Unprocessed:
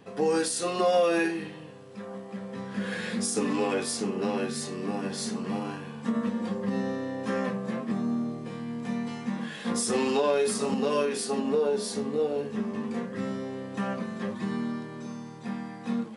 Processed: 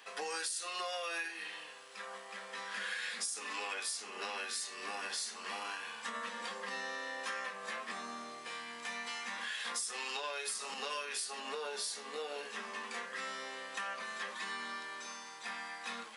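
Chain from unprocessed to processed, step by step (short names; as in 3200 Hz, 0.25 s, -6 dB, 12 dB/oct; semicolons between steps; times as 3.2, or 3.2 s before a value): HPF 1400 Hz 12 dB/oct; compressor 6:1, threshold -44 dBFS, peak gain reduction 15.5 dB; gain +7 dB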